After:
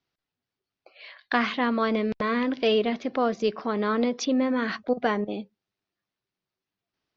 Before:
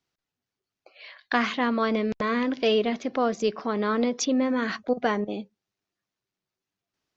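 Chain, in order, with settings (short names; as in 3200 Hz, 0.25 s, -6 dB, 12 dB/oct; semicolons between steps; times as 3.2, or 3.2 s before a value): LPF 5300 Hz 24 dB/oct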